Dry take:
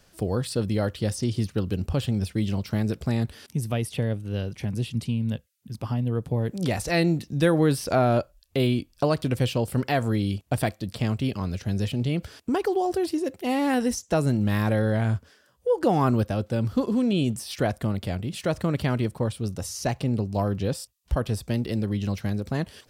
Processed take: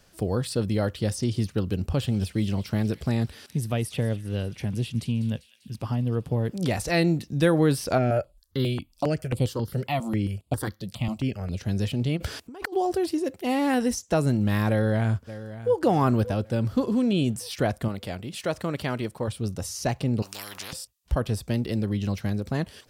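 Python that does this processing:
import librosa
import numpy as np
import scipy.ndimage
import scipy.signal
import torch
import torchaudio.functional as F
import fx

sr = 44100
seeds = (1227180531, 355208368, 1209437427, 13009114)

y = fx.echo_wet_highpass(x, sr, ms=197, feedback_pct=65, hz=2400.0, wet_db=-13.5, at=(2.07, 6.54), fade=0.02)
y = fx.phaser_held(y, sr, hz=7.4, low_hz=280.0, high_hz=5900.0, at=(7.97, 11.56), fade=0.02)
y = fx.over_compress(y, sr, threshold_db=-37.0, ratio=-1.0, at=(12.16, 12.72), fade=0.02)
y = fx.echo_throw(y, sr, start_s=14.69, length_s=1.06, ms=580, feedback_pct=45, wet_db=-14.5)
y = fx.low_shelf(y, sr, hz=220.0, db=-9.5, at=(17.88, 19.28))
y = fx.spectral_comp(y, sr, ratio=10.0, at=(20.22, 20.73))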